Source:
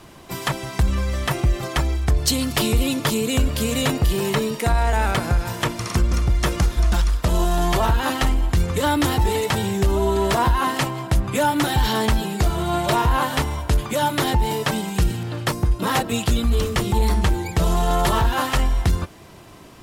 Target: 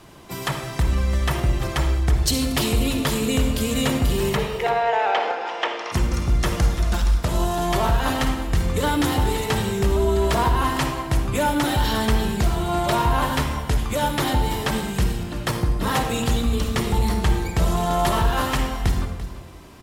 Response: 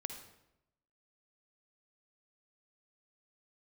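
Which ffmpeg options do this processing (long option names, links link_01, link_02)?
-filter_complex "[0:a]asplit=3[link_01][link_02][link_03];[link_01]afade=type=out:start_time=4.36:duration=0.02[link_04];[link_02]highpass=frequency=390:width=0.5412,highpass=frequency=390:width=1.3066,equalizer=frequency=480:width_type=q:width=4:gain=4,equalizer=frequency=790:width_type=q:width=4:gain=8,equalizer=frequency=1900:width_type=q:width=4:gain=3,equalizer=frequency=2900:width_type=q:width=4:gain=5,equalizer=frequency=4300:width_type=q:width=4:gain=-5,lowpass=frequency=4900:width=0.5412,lowpass=frequency=4900:width=1.3066,afade=type=in:start_time=4.36:duration=0.02,afade=type=out:start_time=5.91:duration=0.02[link_05];[link_03]afade=type=in:start_time=5.91:duration=0.02[link_06];[link_04][link_05][link_06]amix=inputs=3:normalize=0,aecho=1:1:341:0.211[link_07];[1:a]atrim=start_sample=2205[link_08];[link_07][link_08]afir=irnorm=-1:irlink=0"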